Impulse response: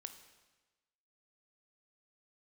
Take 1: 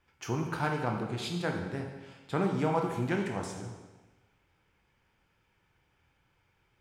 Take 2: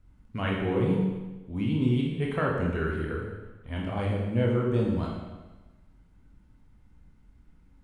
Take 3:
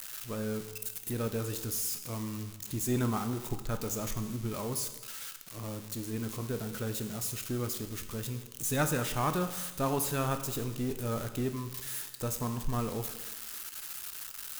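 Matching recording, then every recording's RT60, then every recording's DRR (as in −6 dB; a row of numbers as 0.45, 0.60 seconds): 3; 1.2, 1.2, 1.2 seconds; 1.5, −3.0, 7.5 decibels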